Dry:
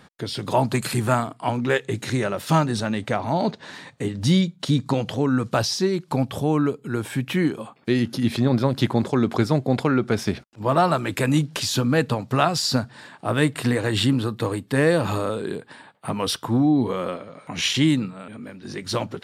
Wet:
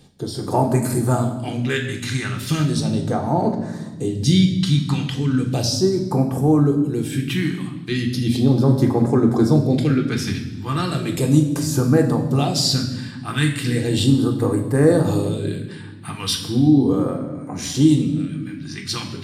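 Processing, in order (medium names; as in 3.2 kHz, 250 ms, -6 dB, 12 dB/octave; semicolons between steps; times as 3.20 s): phase shifter stages 2, 0.36 Hz, lowest notch 500–3200 Hz; reverberation RT60 1.1 s, pre-delay 3 ms, DRR 2 dB; trim +1.5 dB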